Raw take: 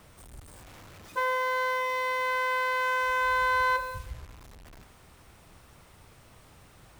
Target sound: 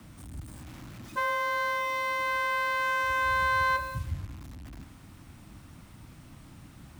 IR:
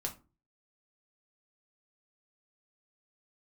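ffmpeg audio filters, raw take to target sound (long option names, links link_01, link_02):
-af "lowshelf=frequency=330:width_type=q:width=3:gain=6,afreqshift=22"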